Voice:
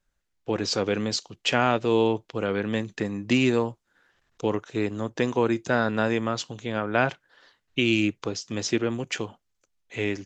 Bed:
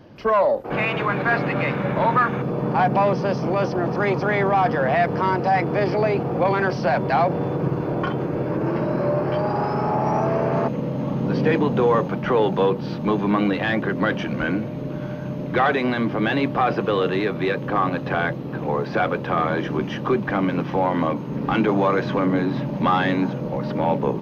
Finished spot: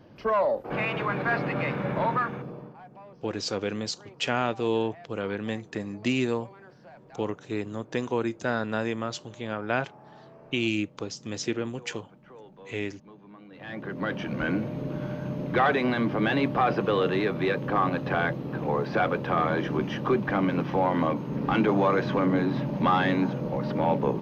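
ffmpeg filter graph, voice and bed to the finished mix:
-filter_complex "[0:a]adelay=2750,volume=0.596[s0];[1:a]volume=10,afade=t=out:st=2:d=0.76:silence=0.0668344,afade=t=in:st=13.5:d=1.09:silence=0.0501187[s1];[s0][s1]amix=inputs=2:normalize=0"

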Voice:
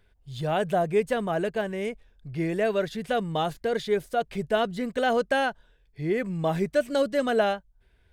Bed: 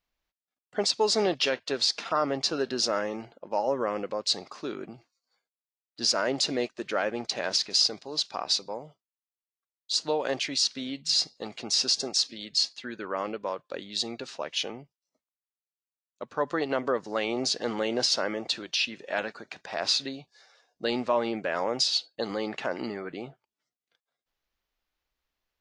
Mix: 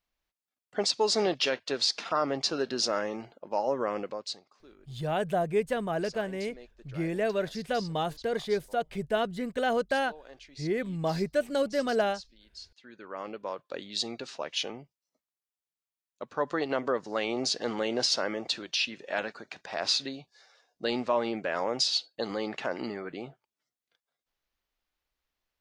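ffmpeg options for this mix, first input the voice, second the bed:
-filter_complex "[0:a]adelay=4600,volume=0.668[s0];[1:a]volume=7.94,afade=t=out:st=3.99:d=0.43:silence=0.105925,afade=t=in:st=12.71:d=1.04:silence=0.105925[s1];[s0][s1]amix=inputs=2:normalize=0"

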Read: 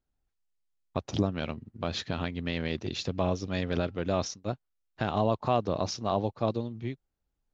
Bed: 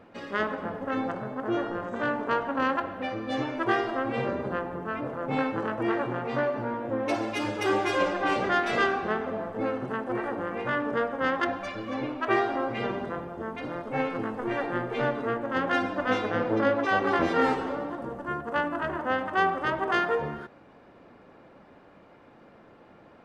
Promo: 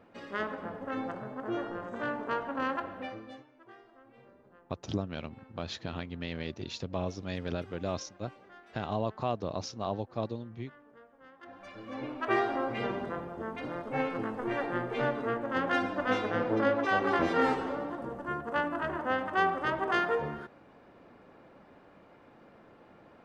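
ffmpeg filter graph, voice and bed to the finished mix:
-filter_complex "[0:a]adelay=3750,volume=0.531[s0];[1:a]volume=10,afade=t=out:st=2.98:d=0.45:silence=0.0707946,afade=t=in:st=11.4:d=1.01:silence=0.0501187[s1];[s0][s1]amix=inputs=2:normalize=0"

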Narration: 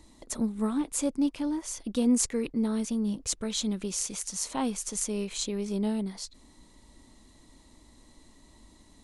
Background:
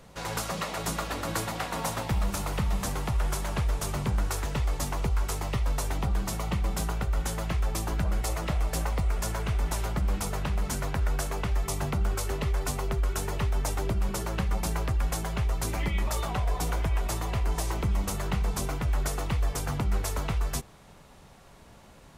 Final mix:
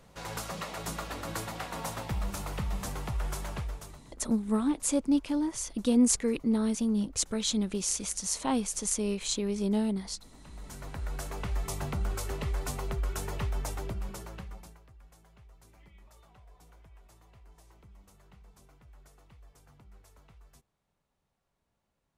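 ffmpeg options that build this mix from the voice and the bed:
-filter_complex "[0:a]adelay=3900,volume=1.12[s0];[1:a]volume=7.5,afade=t=out:st=3.46:d=0.56:silence=0.0794328,afade=t=in:st=10.38:d=1.2:silence=0.0707946,afade=t=out:st=13.47:d=1.32:silence=0.0630957[s1];[s0][s1]amix=inputs=2:normalize=0"

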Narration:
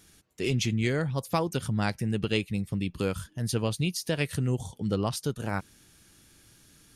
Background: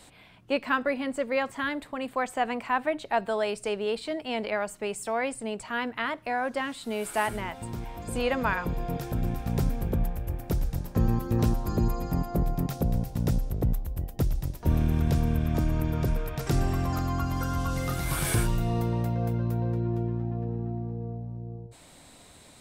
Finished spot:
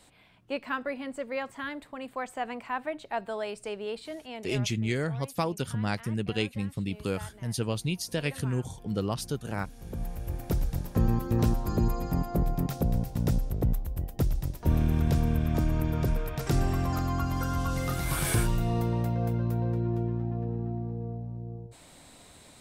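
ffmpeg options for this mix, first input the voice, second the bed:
-filter_complex "[0:a]adelay=4050,volume=0.794[s0];[1:a]volume=4.47,afade=t=out:st=3.98:d=0.81:silence=0.211349,afade=t=in:st=9.76:d=0.67:silence=0.112202[s1];[s0][s1]amix=inputs=2:normalize=0"

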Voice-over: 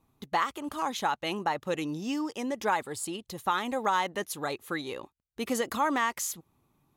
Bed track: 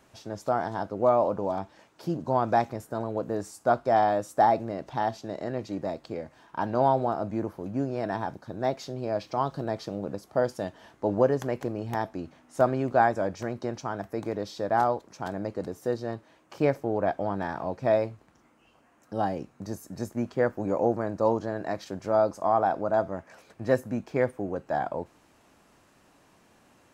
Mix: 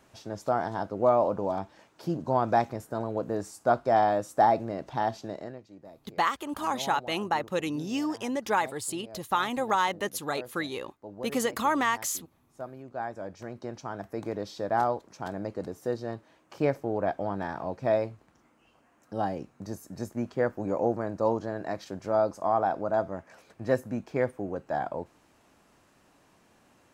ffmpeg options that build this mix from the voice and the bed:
-filter_complex "[0:a]adelay=5850,volume=1.19[s0];[1:a]volume=5.31,afade=t=out:st=5.25:d=0.36:silence=0.149624,afade=t=in:st=12.85:d=1.45:silence=0.177828[s1];[s0][s1]amix=inputs=2:normalize=0"

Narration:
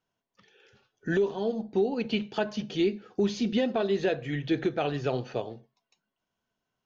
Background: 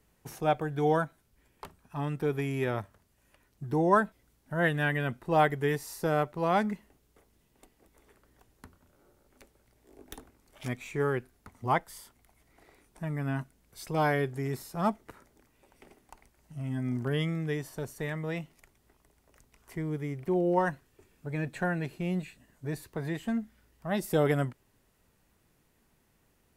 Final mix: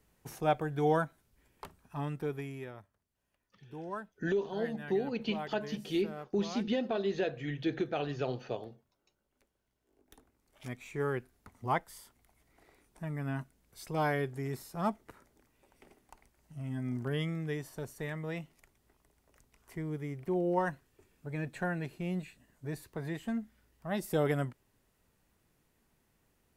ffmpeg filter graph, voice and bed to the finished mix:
-filter_complex "[0:a]adelay=3150,volume=0.531[s0];[1:a]volume=3.55,afade=t=out:st=1.87:d=0.87:silence=0.177828,afade=t=in:st=10.02:d=1.09:silence=0.223872[s1];[s0][s1]amix=inputs=2:normalize=0"

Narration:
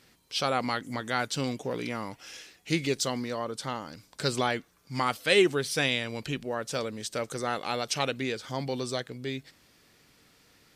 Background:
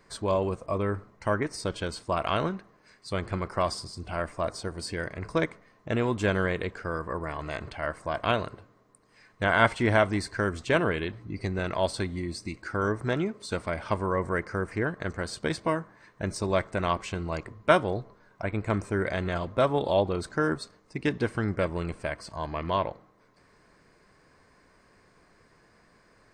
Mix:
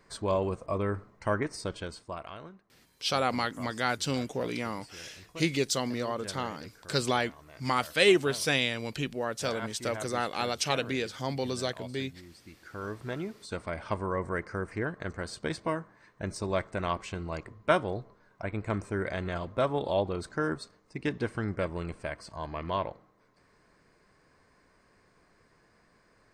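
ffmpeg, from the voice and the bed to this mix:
-filter_complex "[0:a]adelay=2700,volume=1[s0];[1:a]volume=3.98,afade=t=out:st=1.45:d=0.9:silence=0.158489,afade=t=in:st=12.35:d=1.46:silence=0.199526[s1];[s0][s1]amix=inputs=2:normalize=0"

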